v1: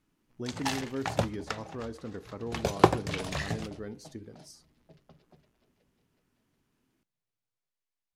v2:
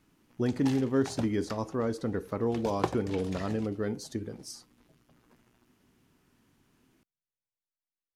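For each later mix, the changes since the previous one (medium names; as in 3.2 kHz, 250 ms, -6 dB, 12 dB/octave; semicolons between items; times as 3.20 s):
speech +8.5 dB; background -9.5 dB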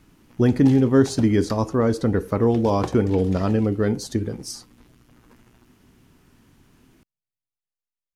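speech +9.5 dB; master: add bass shelf 110 Hz +8 dB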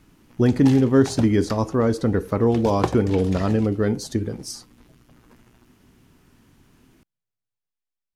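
background +6.0 dB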